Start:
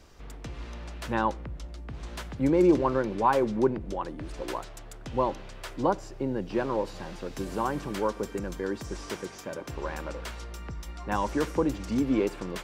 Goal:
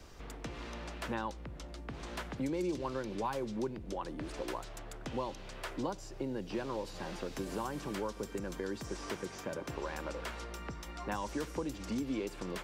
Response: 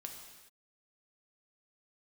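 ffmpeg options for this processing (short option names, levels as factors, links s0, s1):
-filter_complex "[0:a]acrossover=split=180|2900[s0][s1][s2];[s0]acompressor=threshold=0.00398:ratio=4[s3];[s1]acompressor=threshold=0.0126:ratio=4[s4];[s2]acompressor=threshold=0.00282:ratio=4[s5];[s3][s4][s5]amix=inputs=3:normalize=0,volume=1.12"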